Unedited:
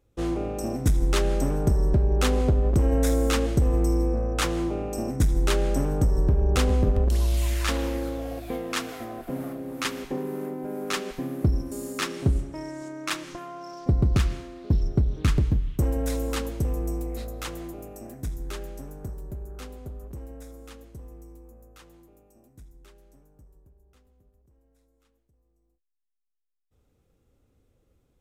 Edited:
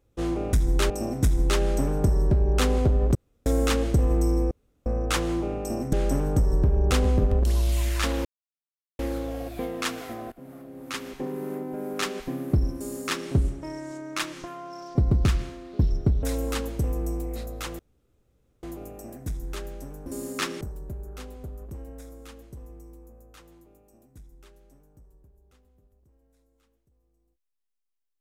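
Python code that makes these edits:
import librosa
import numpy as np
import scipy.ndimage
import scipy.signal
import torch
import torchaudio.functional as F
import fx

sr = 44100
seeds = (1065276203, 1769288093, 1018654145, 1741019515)

y = fx.edit(x, sr, fx.room_tone_fill(start_s=2.78, length_s=0.31),
    fx.insert_room_tone(at_s=4.14, length_s=0.35),
    fx.move(start_s=5.21, length_s=0.37, to_s=0.53),
    fx.insert_silence(at_s=7.9, length_s=0.74),
    fx.fade_in_from(start_s=9.23, length_s=1.2, floor_db=-17.0),
    fx.duplicate(start_s=11.66, length_s=0.55, to_s=19.03),
    fx.cut(start_s=15.14, length_s=0.9),
    fx.insert_room_tone(at_s=17.6, length_s=0.84), tone=tone)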